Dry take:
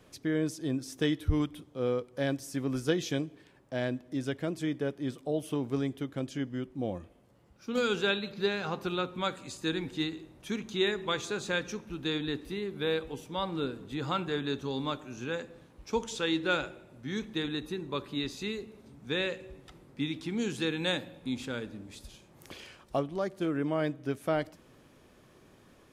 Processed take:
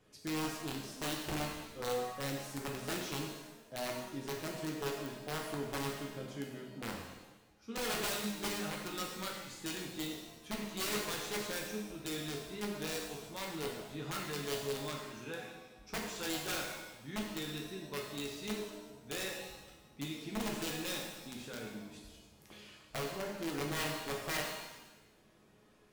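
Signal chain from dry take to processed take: feedback comb 210 Hz, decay 0.28 s, harmonics all, mix 70%; integer overflow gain 31 dB; pitch-shifted reverb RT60 1 s, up +7 st, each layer -8 dB, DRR -0.5 dB; trim -2 dB

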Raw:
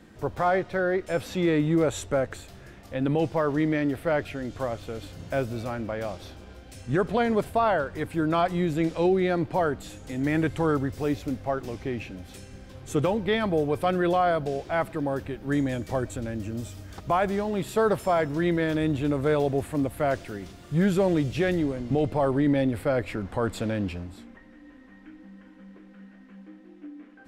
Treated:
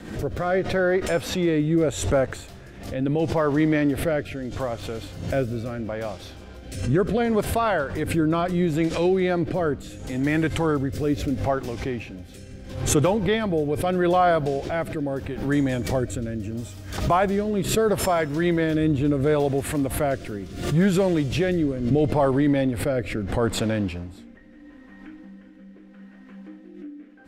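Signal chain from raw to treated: rotary cabinet horn 0.75 Hz; swell ahead of each attack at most 76 dB/s; trim +4.5 dB

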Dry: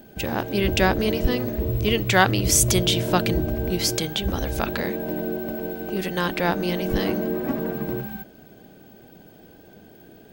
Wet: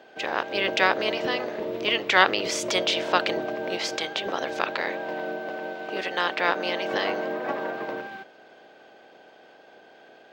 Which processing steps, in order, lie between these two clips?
spectral peaks clipped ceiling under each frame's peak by 12 dB; high-pass 460 Hz 12 dB/octave; distance through air 170 m; trim +1.5 dB

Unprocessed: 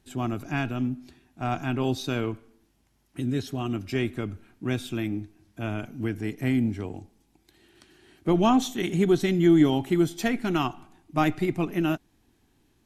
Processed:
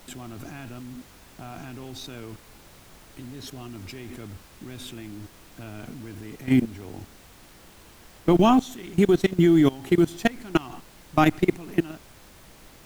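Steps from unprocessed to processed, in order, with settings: level held to a coarse grid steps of 23 dB; companded quantiser 8-bit; added noise pink -57 dBFS; trim +7 dB

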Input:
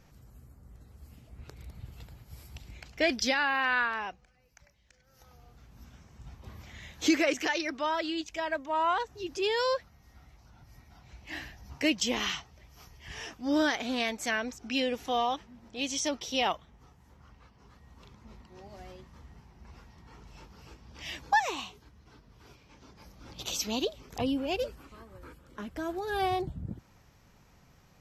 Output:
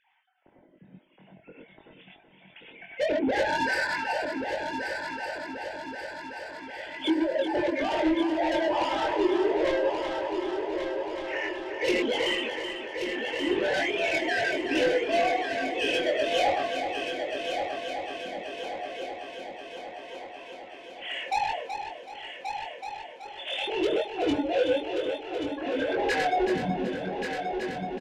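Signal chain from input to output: formants replaced by sine waves; gated-style reverb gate 140 ms rising, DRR -3 dB; low-pass that closes with the level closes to 540 Hz, closed at -22 dBFS; compression 5:1, threshold -28 dBFS, peak gain reduction 15 dB; reverb removal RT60 1.7 s; level rider gain up to 4 dB; saturation -32.5 dBFS, distortion -8 dB; peaking EQ 1.2 kHz -15 dB 0.38 oct; doubling 22 ms -3 dB; multi-head delay 377 ms, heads first and third, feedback 70%, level -8 dB; trim +9 dB

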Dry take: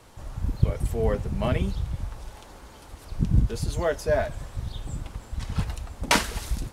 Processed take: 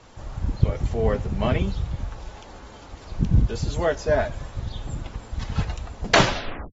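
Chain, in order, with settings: tape stop on the ending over 0.79 s; trim +2 dB; AAC 24 kbps 44.1 kHz

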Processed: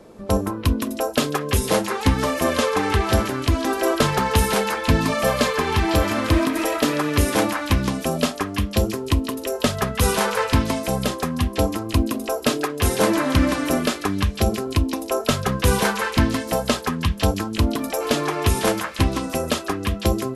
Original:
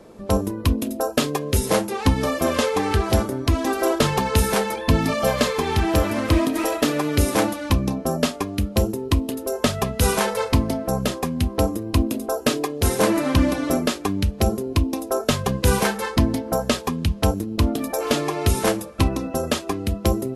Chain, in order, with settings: repeats whose band climbs or falls 167 ms, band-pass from 1.4 kHz, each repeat 0.7 oct, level 0 dB

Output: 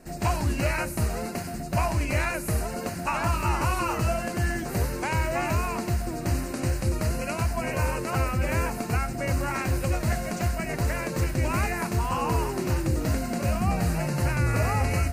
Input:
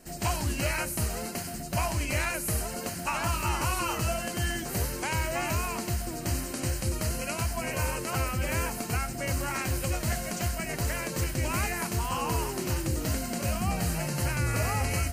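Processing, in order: treble shelf 3.2 kHz -9.5 dB; band-stop 3.1 kHz, Q 10; trim +4.5 dB

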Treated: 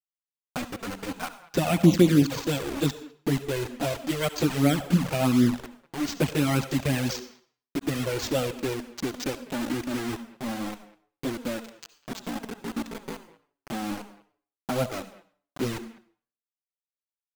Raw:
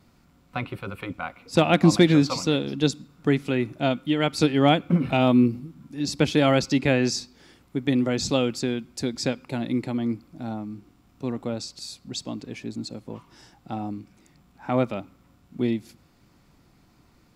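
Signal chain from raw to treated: local Wiener filter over 9 samples; treble shelf 7.2 kHz -6.5 dB; in parallel at -2 dB: compression 12:1, threshold -32 dBFS, peak gain reduction 21 dB; on the sum: rotary cabinet horn 7 Hz; careless resampling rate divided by 4×, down none, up hold; bit crusher 5-bit; speakerphone echo 200 ms, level -19 dB; on a send at -12.5 dB: reverberation RT60 0.45 s, pre-delay 58 ms; on the sum: touch-sensitive flanger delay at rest 7.4 ms, full sweep at -11.5 dBFS

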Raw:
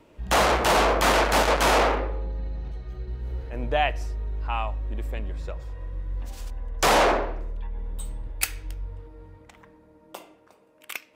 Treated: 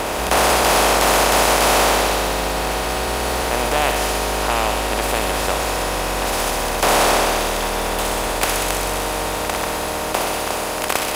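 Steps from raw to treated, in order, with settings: spectral levelling over time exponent 0.2; on a send: feedback echo behind a high-pass 63 ms, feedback 85%, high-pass 3.2 kHz, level -4 dB; on the sum: trim -2 dB

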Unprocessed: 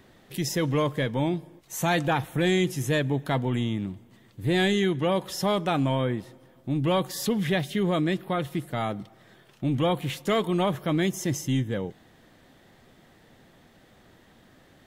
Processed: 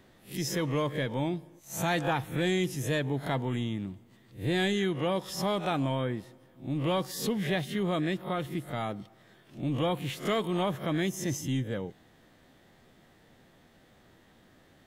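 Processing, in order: reverse spectral sustain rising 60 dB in 0.30 s; trim -5 dB

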